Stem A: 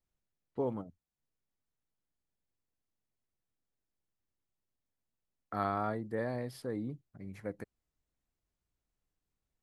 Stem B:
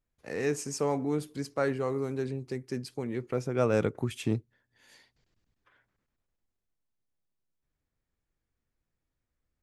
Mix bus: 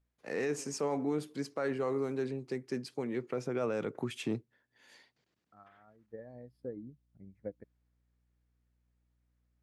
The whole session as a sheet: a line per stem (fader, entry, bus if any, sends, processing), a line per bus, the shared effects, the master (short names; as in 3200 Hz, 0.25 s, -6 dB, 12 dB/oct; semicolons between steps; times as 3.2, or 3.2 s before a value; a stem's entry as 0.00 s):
-5.5 dB, 0.00 s, no send, transient shaper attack +8 dB, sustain -5 dB; hum 60 Hz, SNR 17 dB; spectral expander 1.5:1; auto duck -21 dB, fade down 0.25 s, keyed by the second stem
0.0 dB, 0.00 s, no send, Bessel high-pass 190 Hz, order 4; high shelf 7900 Hz -9.5 dB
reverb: off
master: limiter -24 dBFS, peak gain reduction 8.5 dB